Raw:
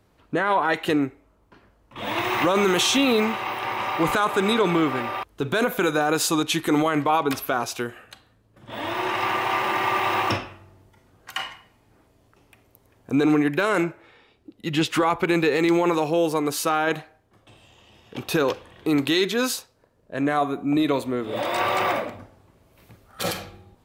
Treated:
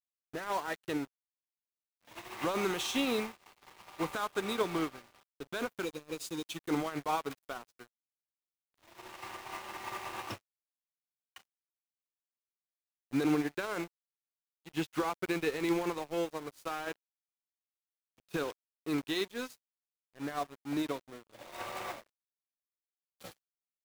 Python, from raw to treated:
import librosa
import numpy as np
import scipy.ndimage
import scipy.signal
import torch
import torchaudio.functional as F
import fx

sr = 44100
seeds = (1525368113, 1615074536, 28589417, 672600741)

y = fx.spec_erase(x, sr, start_s=5.85, length_s=0.71, low_hz=600.0, high_hz=2200.0)
y = np.where(np.abs(y) >= 10.0 ** (-25.0 / 20.0), y, 0.0)
y = fx.upward_expand(y, sr, threshold_db=-37.0, expansion=2.5)
y = y * librosa.db_to_amplitude(-8.5)